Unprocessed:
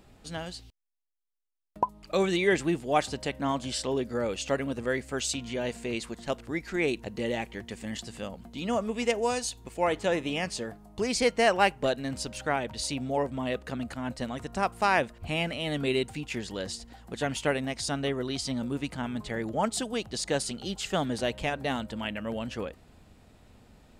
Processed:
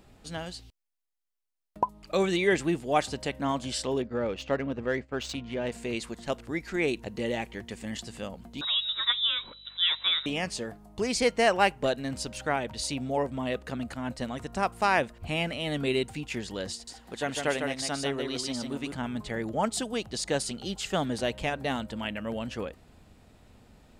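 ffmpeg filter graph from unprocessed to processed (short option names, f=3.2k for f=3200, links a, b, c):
-filter_complex "[0:a]asettb=1/sr,asplit=3[a][b][c];[a]atrim=end=4.024[d];[b]atrim=start=4.02:end=5.72,asetpts=PTS-STARTPTS,afade=t=in:d=0.004:c=qsin,afade=t=out:st=1.696:d=0.004:c=qsin,agate=range=-33dB:threshold=-39dB:ratio=3:release=100:detection=peak,lowpass=8.1k,adynamicsmooth=sensitivity=3:basefreq=2.8k[e];[c]atrim=start=5.716[f];[d][e]acrossfade=d=0.004:c1=hsin:c2=qsin[g];[g][f]acrossfade=d=0.004:c1=qsin:c2=hsin,asettb=1/sr,asplit=3[h][i][j];[h]atrim=end=8.614[k];[i]atrim=start=8.61:end=10.26,asetpts=PTS-STARTPTS,afade=t=in:d=0.004:c=qsin,afade=t=out:st=1.646:d=0.004:c=qsin,lowpass=f=3.4k:t=q:w=0.5098,lowpass=f=3.4k:t=q:w=0.6013,lowpass=f=3.4k:t=q:w=0.9,lowpass=f=3.4k:t=q:w=2.563,afreqshift=-4000,aeval=exprs='val(0)+0.000794*(sin(2*PI*50*n/s)+sin(2*PI*2*50*n/s)/2+sin(2*PI*3*50*n/s)/3+sin(2*PI*4*50*n/s)/4+sin(2*PI*5*50*n/s)/5)':c=same[l];[j]atrim=start=10.256[m];[k][l]acrossfade=d=0.004:c1=hsin:c2=qsin[n];[n][m]acrossfade=d=0.004:c1=qsin:c2=hsin,asettb=1/sr,asplit=3[o][p][q];[o]atrim=end=16.724[r];[p]atrim=start=16.72:end=18.92,asetpts=PTS-STARTPTS,afade=t=in:d=0.004:c=qsin,afade=t=out:st=2.196:d=0.004:c=qsin,lowshelf=f=180:g=-10,aecho=1:1:152:0.562,atrim=end_sample=97020[s];[q]atrim=start=18.916[t];[r][s]acrossfade=d=0.004:c1=hsin:c2=qsin[u];[u][t]acrossfade=d=0.004:c1=qsin:c2=hsin"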